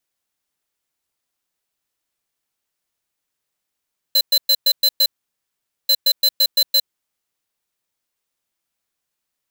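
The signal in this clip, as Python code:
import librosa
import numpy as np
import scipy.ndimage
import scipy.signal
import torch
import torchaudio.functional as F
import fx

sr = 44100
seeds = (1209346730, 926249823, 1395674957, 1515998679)

y = fx.beep_pattern(sr, wave='square', hz=4060.0, on_s=0.06, off_s=0.11, beeps=6, pause_s=0.83, groups=2, level_db=-14.0)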